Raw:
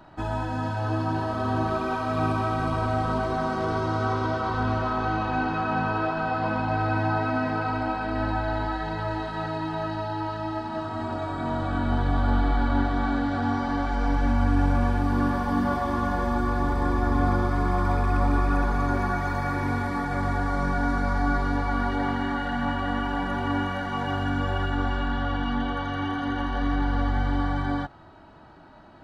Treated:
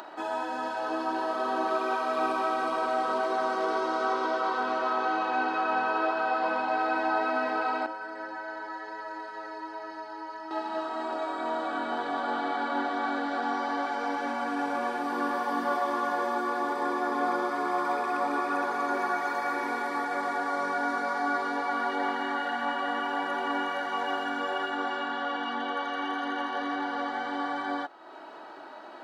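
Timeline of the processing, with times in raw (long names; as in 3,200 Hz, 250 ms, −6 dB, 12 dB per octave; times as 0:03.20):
0:07.86–0:10.51: stiff-string resonator 98 Hz, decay 0.22 s, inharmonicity 0.008
whole clip: high-pass filter 340 Hz 24 dB per octave; upward compression, threshold −36 dBFS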